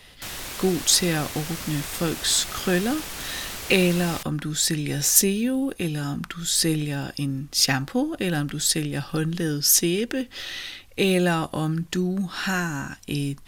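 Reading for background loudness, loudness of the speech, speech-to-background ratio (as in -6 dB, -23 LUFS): -33.0 LUFS, -23.5 LUFS, 9.5 dB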